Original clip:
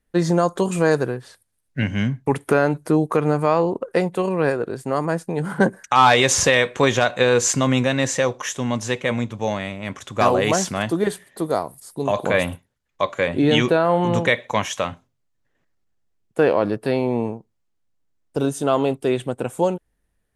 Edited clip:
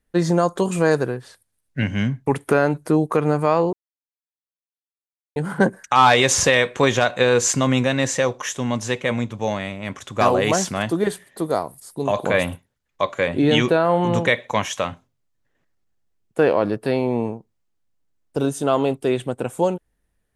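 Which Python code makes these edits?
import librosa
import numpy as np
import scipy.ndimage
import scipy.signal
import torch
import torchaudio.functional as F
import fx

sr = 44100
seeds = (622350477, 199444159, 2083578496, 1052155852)

y = fx.edit(x, sr, fx.silence(start_s=3.73, length_s=1.63), tone=tone)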